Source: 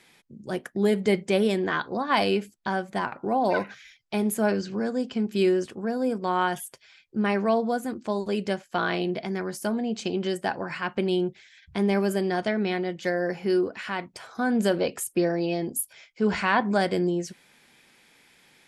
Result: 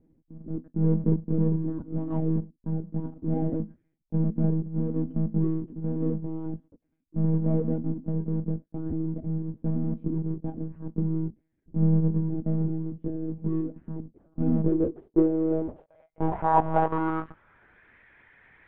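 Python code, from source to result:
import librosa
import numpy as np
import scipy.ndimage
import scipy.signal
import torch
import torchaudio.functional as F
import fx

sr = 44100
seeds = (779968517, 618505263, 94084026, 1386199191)

y = fx.halfwave_hold(x, sr)
y = fx.filter_sweep_lowpass(y, sr, from_hz=260.0, to_hz=1800.0, start_s=14.32, end_s=17.97, q=3.8)
y = fx.lpc_monotone(y, sr, seeds[0], pitch_hz=160.0, order=16)
y = y * 10.0 ** (-7.5 / 20.0)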